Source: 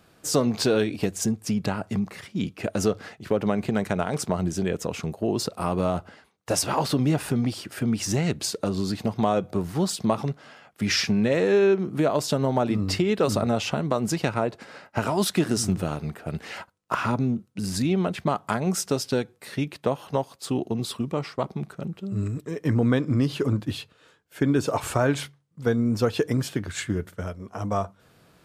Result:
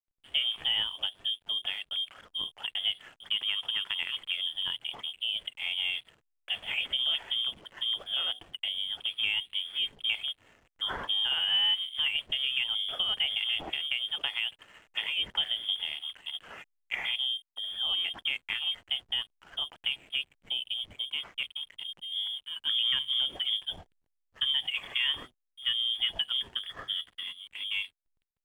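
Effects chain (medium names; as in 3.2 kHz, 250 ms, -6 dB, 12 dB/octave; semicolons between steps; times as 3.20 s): frequency inversion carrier 3.4 kHz; de-hum 124.8 Hz, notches 6; hysteresis with a dead band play -41.5 dBFS; trim -7.5 dB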